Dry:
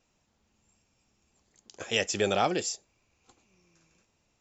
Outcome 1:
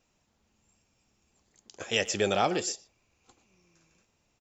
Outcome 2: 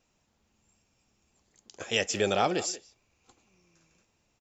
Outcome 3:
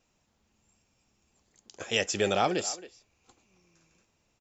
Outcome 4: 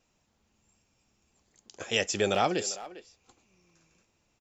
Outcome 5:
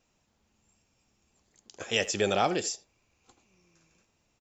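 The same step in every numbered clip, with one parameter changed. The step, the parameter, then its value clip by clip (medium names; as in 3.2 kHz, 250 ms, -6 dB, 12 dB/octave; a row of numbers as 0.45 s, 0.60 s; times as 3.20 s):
speakerphone echo, time: 120 ms, 180 ms, 270 ms, 400 ms, 80 ms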